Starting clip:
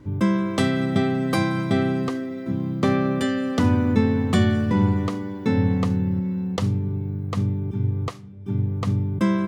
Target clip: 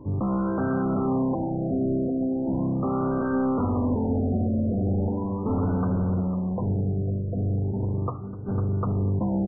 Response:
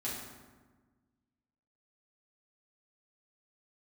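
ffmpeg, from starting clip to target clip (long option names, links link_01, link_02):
-filter_complex "[0:a]lowshelf=frequency=190:gain=-4,bandreject=frequency=60:width_type=h:width=6,bandreject=frequency=120:width_type=h:width=6,bandreject=frequency=180:width_type=h:width=6,bandreject=frequency=240:width_type=h:width=6,bandreject=frequency=300:width_type=h:width=6,acrossover=split=1800[link_01][link_02];[link_01]alimiter=limit=-17dB:level=0:latency=1:release=22[link_03];[link_02]aeval=exprs='0.02*(abs(mod(val(0)/0.02+3,4)-2)-1)':channel_layout=same[link_04];[link_03][link_04]amix=inputs=2:normalize=0,lowpass=frequency=4200:width_type=q:width=7.2,asoftclip=type=tanh:threshold=-29dB,asplit=2[link_05][link_06];[link_06]adelay=501,lowpass=frequency=3300:poles=1,volume=-10dB,asplit=2[link_07][link_08];[link_08]adelay=501,lowpass=frequency=3300:poles=1,volume=0.31,asplit=2[link_09][link_10];[link_10]adelay=501,lowpass=frequency=3300:poles=1,volume=0.31[link_11];[link_05][link_07][link_09][link_11]amix=inputs=4:normalize=0,asplit=2[link_12][link_13];[1:a]atrim=start_sample=2205,afade=type=out:start_time=0.25:duration=0.01,atrim=end_sample=11466[link_14];[link_13][link_14]afir=irnorm=-1:irlink=0,volume=-17.5dB[link_15];[link_12][link_15]amix=inputs=2:normalize=0,afftfilt=real='re*lt(b*sr/1024,720*pow(1600/720,0.5+0.5*sin(2*PI*0.38*pts/sr)))':imag='im*lt(b*sr/1024,720*pow(1600/720,0.5+0.5*sin(2*PI*0.38*pts/sr)))':win_size=1024:overlap=0.75,volume=6dB"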